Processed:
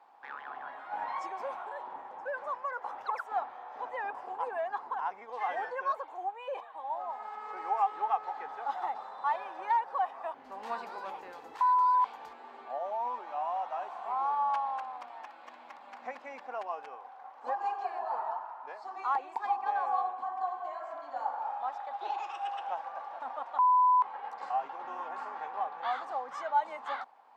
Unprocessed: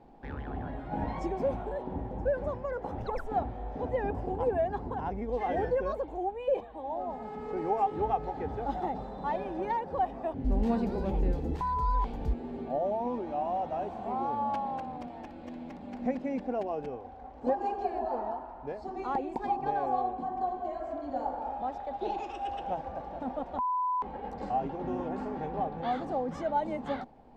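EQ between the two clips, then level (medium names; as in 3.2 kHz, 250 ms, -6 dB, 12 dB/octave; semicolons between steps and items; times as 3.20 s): resonant high-pass 1.1 kHz, resonance Q 2.6; 0.0 dB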